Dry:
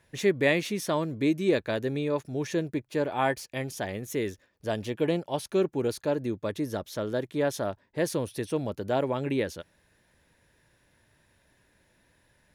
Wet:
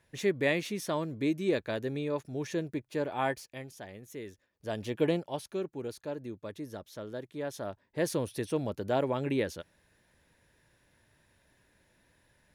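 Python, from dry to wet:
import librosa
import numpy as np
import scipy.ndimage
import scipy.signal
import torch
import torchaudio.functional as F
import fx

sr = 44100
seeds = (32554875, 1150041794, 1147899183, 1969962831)

y = fx.gain(x, sr, db=fx.line((3.3, -4.5), (3.73, -12.5), (4.27, -12.5), (5.03, -0.5), (5.61, -10.0), (7.43, -10.0), (8.07, -2.0)))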